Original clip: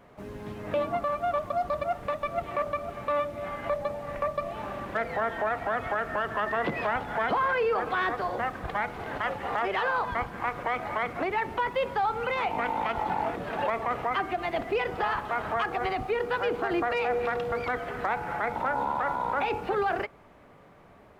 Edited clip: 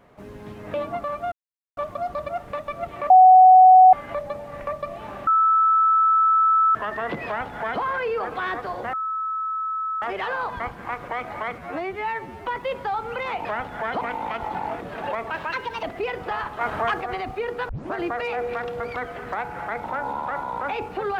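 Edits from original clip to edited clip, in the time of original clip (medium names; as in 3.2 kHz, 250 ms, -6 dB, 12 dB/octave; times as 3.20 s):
1.32 s: insert silence 0.45 s
2.65–3.48 s: bleep 745 Hz -7 dBFS
4.82–6.30 s: bleep 1.31 kHz -14.5 dBFS
6.81–7.37 s: copy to 12.56 s
8.48–9.57 s: bleep 1.3 kHz -24 dBFS
11.13–11.57 s: stretch 2×
13.85–14.55 s: speed 132%
15.33–15.73 s: gain +4.5 dB
16.41 s: tape start 0.25 s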